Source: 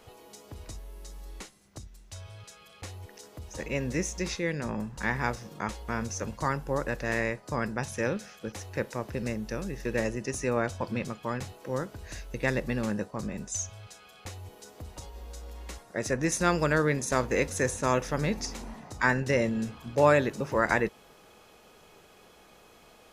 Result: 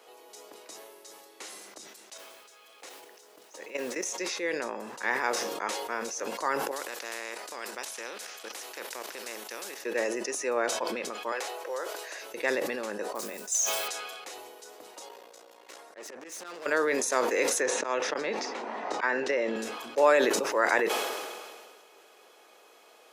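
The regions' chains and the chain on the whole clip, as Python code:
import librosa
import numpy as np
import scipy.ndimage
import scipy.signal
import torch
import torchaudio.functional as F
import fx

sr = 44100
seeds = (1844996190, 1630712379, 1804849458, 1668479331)

y = fx.level_steps(x, sr, step_db=14, at=(2.14, 4.05), fade=0.02)
y = fx.dmg_noise_colour(y, sr, seeds[0], colour='pink', level_db=-62.0, at=(2.14, 4.05), fade=0.02)
y = fx.chain(y, sr, fx.level_steps(step_db=12),
    fx.spectral_comp(ratio=2.0), at=(6.71, 9.83))
y = fx.chain(y, sr, fx.highpass(hz=410.0, slope=24),
    fx.band_squash(depth_pct=70), at=(11.32, 12.19))
y = fx.chain(y, sr, fx.quant_companded(bits=6),
    fx.high_shelf(hz=6600.0, db=11.0), at=(13.15, 13.88))
y = fx.chain(y, sr, fx.high_shelf(hz=6300.0, db=-4.5),
    fx.auto_swell(attack_ms=116.0),
    fx.tube_stage(drive_db=38.0, bias=0.6), at=(15.08, 16.66))
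y = fx.chain(y, sr, fx.lowpass(hz=4100.0, slope=12),
    fx.auto_swell(attack_ms=170.0),
    fx.band_squash(depth_pct=100), at=(17.6, 19.56))
y = scipy.signal.sosfilt(scipy.signal.butter(4, 350.0, 'highpass', fs=sr, output='sos'), y)
y = fx.sustainer(y, sr, db_per_s=31.0)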